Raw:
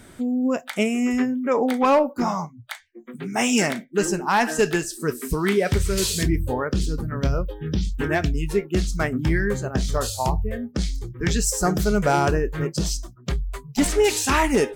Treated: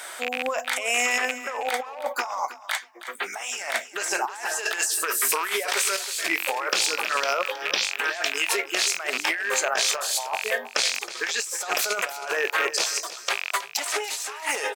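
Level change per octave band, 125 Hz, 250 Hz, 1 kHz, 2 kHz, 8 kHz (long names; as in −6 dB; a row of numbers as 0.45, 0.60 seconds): below −35 dB, −20.5 dB, −2.5 dB, +4.0 dB, +3.0 dB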